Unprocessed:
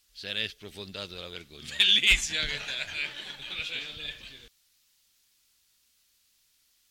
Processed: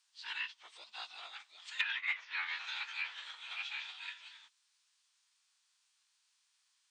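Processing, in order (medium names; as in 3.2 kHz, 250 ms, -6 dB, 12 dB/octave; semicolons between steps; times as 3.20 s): low-pass that closes with the level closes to 2 kHz, closed at -22 dBFS; formant-preserving pitch shift -10 st; ladder high-pass 850 Hz, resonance 45%; trim +2.5 dB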